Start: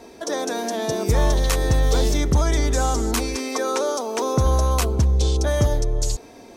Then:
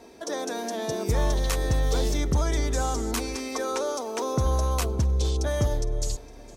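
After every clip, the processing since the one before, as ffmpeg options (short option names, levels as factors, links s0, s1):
-af "aecho=1:1:461|922|1383:0.0891|0.0339|0.0129,volume=0.531"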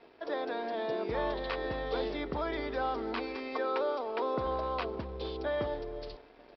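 -filter_complex "[0:a]acrossover=split=260 3600:gain=0.126 1 0.158[s0][s1][s2];[s0][s1][s2]amix=inputs=3:normalize=0,aresample=11025,aeval=exprs='sgn(val(0))*max(abs(val(0))-0.00168,0)':c=same,aresample=44100,volume=0.794"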